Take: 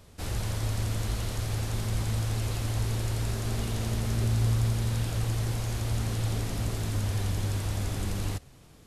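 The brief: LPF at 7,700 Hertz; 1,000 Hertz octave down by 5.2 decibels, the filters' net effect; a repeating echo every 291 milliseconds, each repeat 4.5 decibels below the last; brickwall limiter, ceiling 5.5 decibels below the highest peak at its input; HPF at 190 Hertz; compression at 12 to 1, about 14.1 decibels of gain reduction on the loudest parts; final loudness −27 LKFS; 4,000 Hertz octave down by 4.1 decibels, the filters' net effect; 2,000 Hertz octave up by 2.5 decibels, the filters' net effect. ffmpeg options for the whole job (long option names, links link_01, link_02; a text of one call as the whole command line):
ffmpeg -i in.wav -af "highpass=190,lowpass=7700,equalizer=frequency=1000:width_type=o:gain=-9,equalizer=frequency=2000:width_type=o:gain=7.5,equalizer=frequency=4000:width_type=o:gain=-7,acompressor=threshold=-45dB:ratio=12,alimiter=level_in=17dB:limit=-24dB:level=0:latency=1,volume=-17dB,aecho=1:1:291|582|873|1164|1455|1746|2037|2328|2619:0.596|0.357|0.214|0.129|0.0772|0.0463|0.0278|0.0167|0.01,volume=21dB" out.wav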